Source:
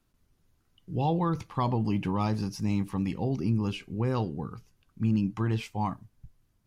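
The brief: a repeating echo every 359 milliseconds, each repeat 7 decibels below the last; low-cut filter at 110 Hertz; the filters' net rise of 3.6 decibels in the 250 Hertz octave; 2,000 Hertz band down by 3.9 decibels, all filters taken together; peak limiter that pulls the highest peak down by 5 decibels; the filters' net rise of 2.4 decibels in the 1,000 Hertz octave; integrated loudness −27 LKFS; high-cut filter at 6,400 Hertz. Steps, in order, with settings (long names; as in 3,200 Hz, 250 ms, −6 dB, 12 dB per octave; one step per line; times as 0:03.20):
high-pass filter 110 Hz
low-pass filter 6,400 Hz
parametric band 250 Hz +5 dB
parametric band 1,000 Hz +4 dB
parametric band 2,000 Hz −6.5 dB
brickwall limiter −19 dBFS
repeating echo 359 ms, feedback 45%, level −7 dB
level +2.5 dB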